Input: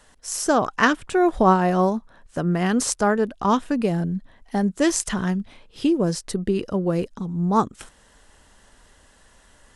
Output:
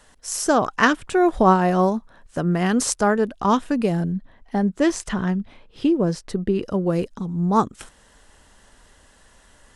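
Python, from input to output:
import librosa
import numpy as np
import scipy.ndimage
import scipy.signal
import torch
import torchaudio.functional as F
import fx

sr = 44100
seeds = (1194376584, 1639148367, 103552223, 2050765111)

y = fx.lowpass(x, sr, hz=2700.0, slope=6, at=(4.12, 6.62))
y = F.gain(torch.from_numpy(y), 1.0).numpy()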